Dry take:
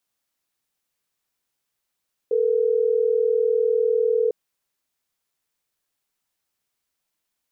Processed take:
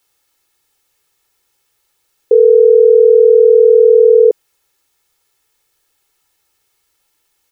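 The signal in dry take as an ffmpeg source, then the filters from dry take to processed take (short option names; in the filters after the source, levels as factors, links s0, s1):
-f lavfi -i "aevalsrc='0.1*(sin(2*PI*440*t)+sin(2*PI*480*t))*clip(min(mod(t,6),2-mod(t,6))/0.005,0,1)':d=3.12:s=44100"
-af "aecho=1:1:2.3:0.65,alimiter=level_in=4.73:limit=0.891:release=50:level=0:latency=1"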